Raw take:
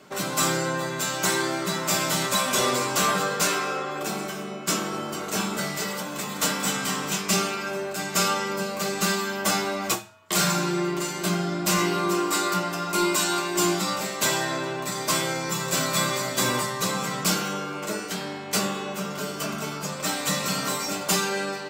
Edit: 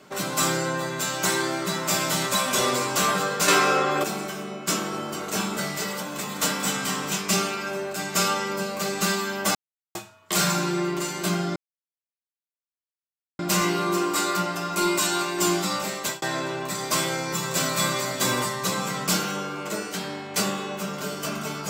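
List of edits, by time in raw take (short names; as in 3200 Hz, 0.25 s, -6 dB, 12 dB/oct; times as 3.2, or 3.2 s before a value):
3.48–4.04 gain +7.5 dB
9.55–9.95 mute
11.56 insert silence 1.83 s
14.14–14.39 fade out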